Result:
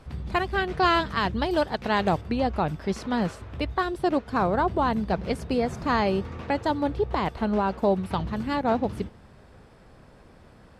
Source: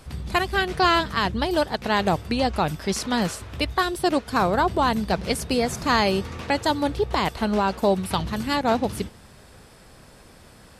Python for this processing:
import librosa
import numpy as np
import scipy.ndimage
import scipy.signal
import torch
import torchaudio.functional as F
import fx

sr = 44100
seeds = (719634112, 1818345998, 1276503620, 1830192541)

y = fx.lowpass(x, sr, hz=fx.steps((0.0, 1900.0), (0.83, 3300.0), (2.21, 1400.0)), slope=6)
y = F.gain(torch.from_numpy(y), -1.5).numpy()